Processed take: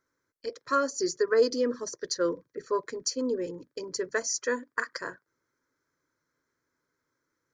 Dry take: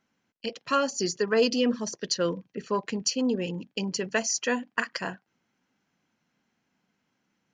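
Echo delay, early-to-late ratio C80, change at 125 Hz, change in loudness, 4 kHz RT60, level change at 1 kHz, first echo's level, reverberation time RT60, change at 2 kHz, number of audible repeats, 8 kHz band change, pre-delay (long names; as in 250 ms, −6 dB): no echo audible, no reverb audible, −13.5 dB, −1.5 dB, no reverb audible, −1.5 dB, no echo audible, no reverb audible, −2.5 dB, no echo audible, −2.5 dB, no reverb audible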